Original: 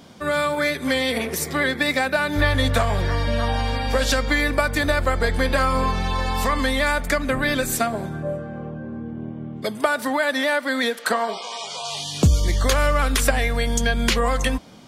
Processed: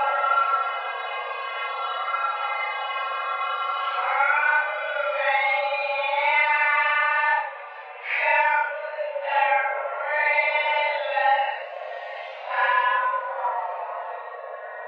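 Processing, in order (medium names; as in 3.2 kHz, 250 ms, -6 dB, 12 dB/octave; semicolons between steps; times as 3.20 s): mistuned SSB +310 Hz 270–2800 Hz; Paulstretch 6.3×, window 0.05 s, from 5.81 s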